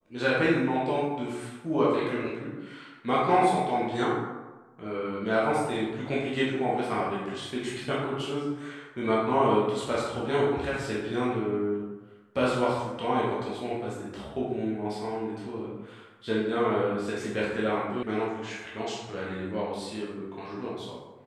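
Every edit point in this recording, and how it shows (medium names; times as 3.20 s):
18.03 s: sound stops dead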